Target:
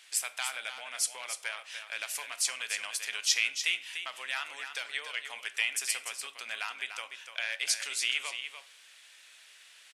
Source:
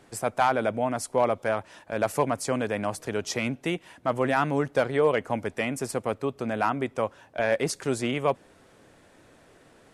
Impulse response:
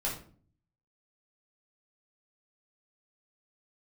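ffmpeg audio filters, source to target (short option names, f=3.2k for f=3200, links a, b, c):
-filter_complex "[0:a]acompressor=threshold=-27dB:ratio=6,highpass=f=2.8k:t=q:w=1.6,aecho=1:1:294:0.376,asplit=2[a][b];[1:a]atrim=start_sample=2205,adelay=23[c];[b][c]afir=irnorm=-1:irlink=0,volume=-17.5dB[d];[a][d]amix=inputs=2:normalize=0,volume=6.5dB"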